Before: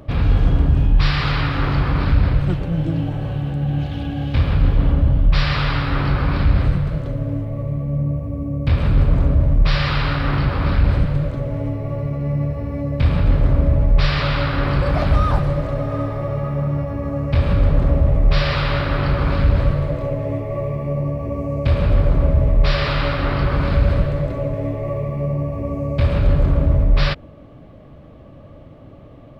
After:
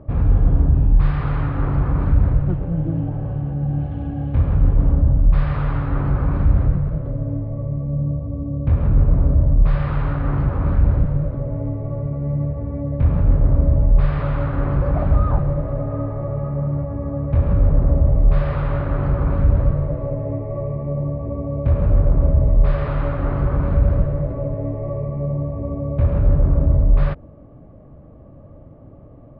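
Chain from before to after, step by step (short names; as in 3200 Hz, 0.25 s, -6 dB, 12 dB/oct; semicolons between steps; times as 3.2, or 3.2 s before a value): LPF 1100 Hz 12 dB/oct; low shelf 130 Hz +3.5 dB; gain -2.5 dB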